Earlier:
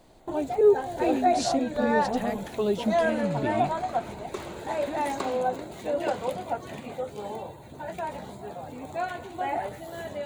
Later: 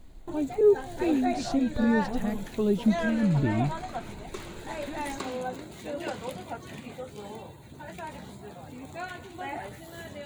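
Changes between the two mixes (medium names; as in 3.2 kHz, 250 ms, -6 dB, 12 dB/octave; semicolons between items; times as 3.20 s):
speech: add tilt EQ -3 dB/octave; master: add peaking EQ 660 Hz -9 dB 1.5 oct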